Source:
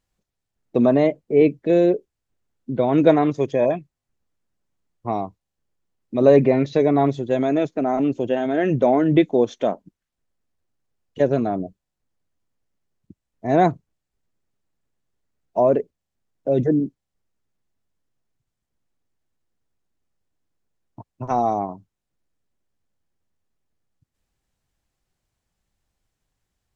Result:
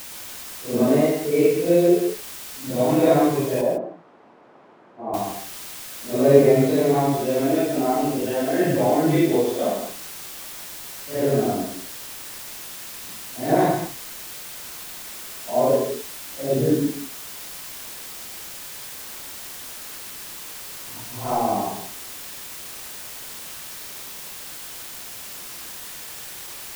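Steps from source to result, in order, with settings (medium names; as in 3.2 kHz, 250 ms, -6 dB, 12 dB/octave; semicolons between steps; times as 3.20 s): phase randomisation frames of 200 ms; word length cut 6-bit, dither triangular; 3.61–5.14 s: Butterworth band-pass 430 Hz, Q 0.58; gated-style reverb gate 180 ms rising, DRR 6 dB; trim -1.5 dB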